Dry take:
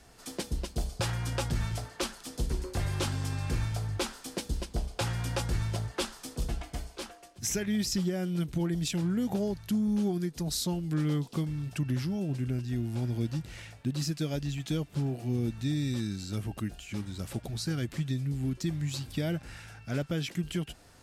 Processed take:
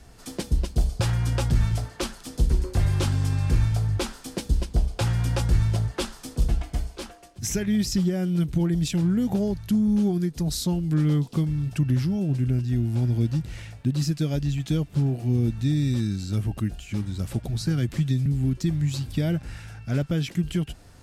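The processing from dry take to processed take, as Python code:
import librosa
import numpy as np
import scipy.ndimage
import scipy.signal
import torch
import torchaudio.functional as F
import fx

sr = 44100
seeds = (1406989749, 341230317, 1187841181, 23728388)

y = fx.low_shelf(x, sr, hz=210.0, db=9.5)
y = fx.band_squash(y, sr, depth_pct=40, at=(17.61, 18.26))
y = F.gain(torch.from_numpy(y), 2.0).numpy()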